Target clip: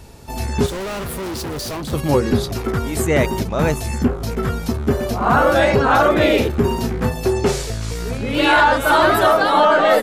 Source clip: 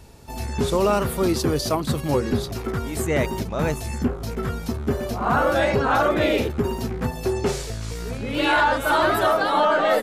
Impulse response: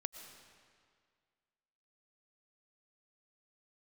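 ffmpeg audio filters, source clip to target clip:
-filter_complex "[0:a]asettb=1/sr,asplit=3[a][b][c];[a]atrim=end=0.664[d];[b]atrim=start=0.66:end=1.93,asetpts=PTS-STARTPTS,afade=t=in:d=0.004:c=qsin,afade=t=out:st=1.266:d=0.004:c=qsin,volume=30.5dB,asoftclip=hard,volume=-30.5dB[e];[c]atrim=start=1.926[f];[d][e]acrossfade=d=0.004:c1=hsin:c2=qsin[g];[g][f]acrossfade=d=0.004:c1=qsin:c2=hsin,asettb=1/sr,asplit=3[h][i][j];[h]atrim=end=6.504[k];[i]atrim=start=6.5:end=7.14,asetpts=PTS-STARTPTS,afade=t=in:d=0.004:c=qsin,afade=t=out:st=0.636:d=0.004:c=qsin,asplit=2[l][m];[m]adelay=30,volume=-7dB[n];[l][n]amix=inputs=2:normalize=0,atrim=end_sample=28224[o];[j]atrim=start=7.136[p];[k][o]acrossfade=d=0.004:c1=hsin:c2=qsin[q];[q][p]acrossfade=d=0.004:c1=qsin:c2=hsin,volume=5.5dB"

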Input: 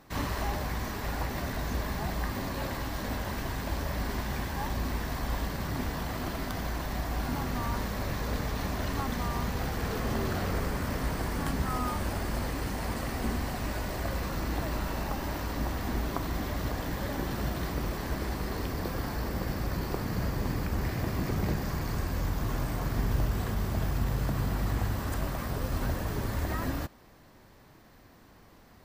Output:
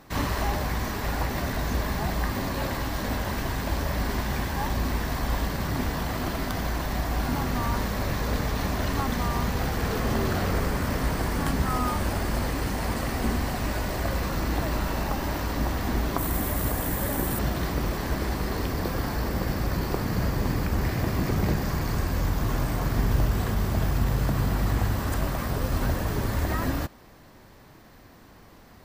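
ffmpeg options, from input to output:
-filter_complex "[0:a]asettb=1/sr,asplit=3[a][b][c];[a]atrim=end=16.184[d];[b]atrim=start=16.18:end=17.39,asetpts=PTS-STARTPTS,afade=t=in:d=0.004:c=qsin,afade=t=out:st=1.206:d=0.004:c=qsin,highshelf=f=7.2k:t=q:w=1.5:g=10[e];[c]atrim=start=17.386[f];[d][e]acrossfade=d=0.004:c1=hsin:c2=qsin[g];[g][f]acrossfade=d=0.004:c1=qsin:c2=hsin,volume=5dB"

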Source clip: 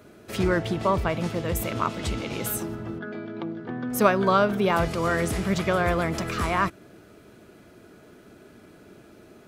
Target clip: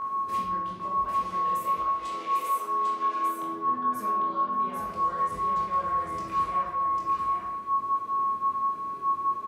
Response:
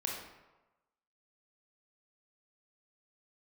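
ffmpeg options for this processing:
-filter_complex "[0:a]asettb=1/sr,asplit=3[a][b][c];[a]atrim=end=1.054[d];[b]atrim=start=1.05:end=3.43,asetpts=PTS-STARTPTS,afade=t=in:d=0.004:c=qsin,afade=t=out:st=2.376:d=0.004:c=qsin,highpass=460[e];[c]atrim=start=3.426[f];[d][e]acrossfade=d=0.004:c1=hsin:c2=qsin[g];[g][f]acrossfade=d=0.004:c1=qsin:c2=hsin,acompressor=threshold=-37dB:ratio=10,aeval=exprs='val(0)+0.0631*sin(2*PI*1100*n/s)':c=same,flanger=delay=19:depth=2.3:speed=0.74,aecho=1:1:798:0.631[h];[1:a]atrim=start_sample=2205[i];[h][i]afir=irnorm=-1:irlink=0,volume=-1.5dB"

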